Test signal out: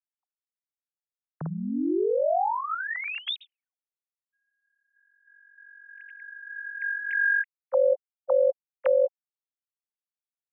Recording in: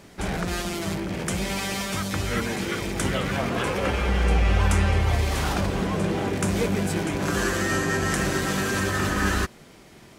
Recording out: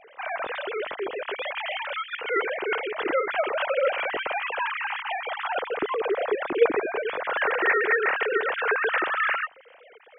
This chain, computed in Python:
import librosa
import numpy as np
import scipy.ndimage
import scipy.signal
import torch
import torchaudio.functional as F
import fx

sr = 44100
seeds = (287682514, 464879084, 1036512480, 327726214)

y = fx.sine_speech(x, sr)
y = F.gain(torch.from_numpy(y), -2.5).numpy()